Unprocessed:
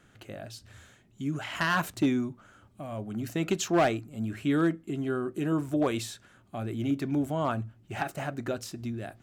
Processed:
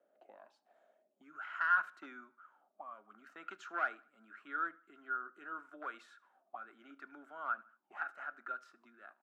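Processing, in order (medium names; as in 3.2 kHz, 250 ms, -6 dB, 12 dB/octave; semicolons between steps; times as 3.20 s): steep high-pass 200 Hz 36 dB/octave; auto-wah 580–1400 Hz, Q 12, up, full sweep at -34 dBFS; feedback delay 76 ms, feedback 39%, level -22.5 dB; trim +5.5 dB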